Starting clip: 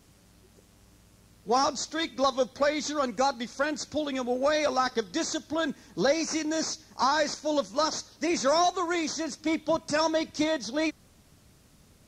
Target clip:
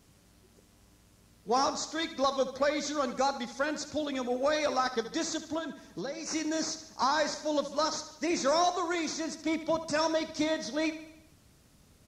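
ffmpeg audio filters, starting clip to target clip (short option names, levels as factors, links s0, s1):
-filter_complex "[0:a]asettb=1/sr,asplit=3[s0][s1][s2];[s0]atrim=end=5.584[s3];[s1]atrim=start=5.58:end=6.26,asetpts=PTS-STARTPTS,afade=t=in:d=0.004:c=qsin,afade=t=out:st=0.676:d=0.004:c=qsin,acompressor=threshold=0.0251:ratio=6[s4];[s2]atrim=start=6.256[s5];[s3][s4]acrossfade=d=0.004:c1=hsin:c2=qsin[s6];[s6][s5]acrossfade=d=0.004:c1=qsin:c2=hsin,asplit=2[s7][s8];[s8]aecho=0:1:73|146|219|292|365|438:0.237|0.128|0.0691|0.0373|0.0202|0.0109[s9];[s7][s9]amix=inputs=2:normalize=0,volume=0.708"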